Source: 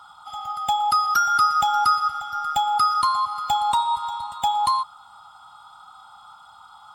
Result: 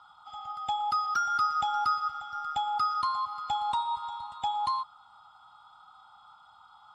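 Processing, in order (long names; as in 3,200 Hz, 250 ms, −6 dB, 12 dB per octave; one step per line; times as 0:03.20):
low-pass filter 5,200 Hz 12 dB per octave
level −8.5 dB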